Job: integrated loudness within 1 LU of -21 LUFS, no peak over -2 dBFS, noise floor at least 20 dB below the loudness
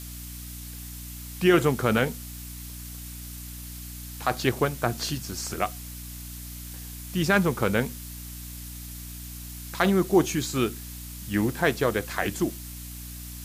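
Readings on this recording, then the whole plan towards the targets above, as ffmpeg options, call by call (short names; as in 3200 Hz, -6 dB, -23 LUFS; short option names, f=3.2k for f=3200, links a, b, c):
hum 60 Hz; harmonics up to 300 Hz; hum level -38 dBFS; noise floor -39 dBFS; noise floor target -47 dBFS; loudness -26.5 LUFS; peak -8.5 dBFS; loudness target -21.0 LUFS
-> -af "bandreject=f=60:t=h:w=4,bandreject=f=120:t=h:w=4,bandreject=f=180:t=h:w=4,bandreject=f=240:t=h:w=4,bandreject=f=300:t=h:w=4"
-af "afftdn=nr=8:nf=-39"
-af "volume=5.5dB"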